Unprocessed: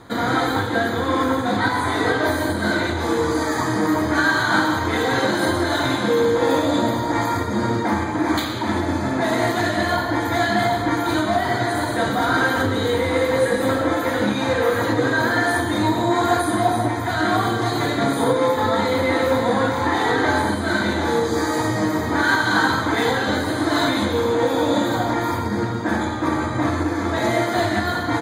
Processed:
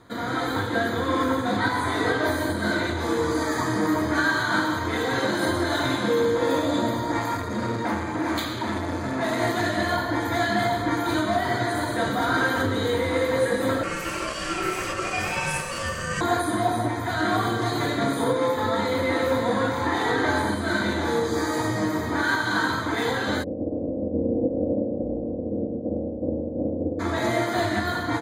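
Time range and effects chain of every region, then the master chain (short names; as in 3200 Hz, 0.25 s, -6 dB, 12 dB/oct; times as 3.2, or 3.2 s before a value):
7.19–9.41 notches 50/100/150/200/250/300/350/400/450/500 Hz + core saturation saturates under 650 Hz
13.83–16.21 HPF 440 Hz 6 dB/oct + bell 7500 Hz +12.5 dB 0.65 oct + ring modulator 850 Hz
23.42–26.99 spectral limiter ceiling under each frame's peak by 16 dB + steep low-pass 590 Hz 48 dB/oct + comb 3.8 ms
whole clip: AGC gain up to 5.5 dB; notch 810 Hz, Q 12; gain -8 dB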